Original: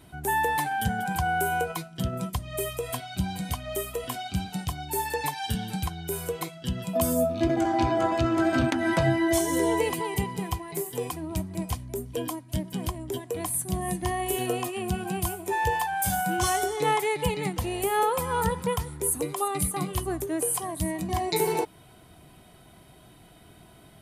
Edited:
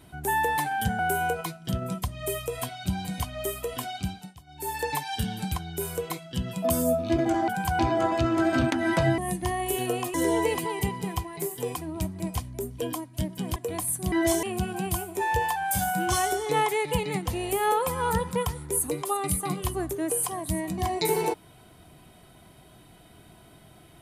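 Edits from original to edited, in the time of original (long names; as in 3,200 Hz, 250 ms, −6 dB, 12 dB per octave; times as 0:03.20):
0:00.99–0:01.30: move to 0:07.79
0:04.28–0:05.13: duck −18.5 dB, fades 0.36 s linear
0:09.18–0:09.49: swap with 0:13.78–0:14.74
0:12.91–0:13.22: remove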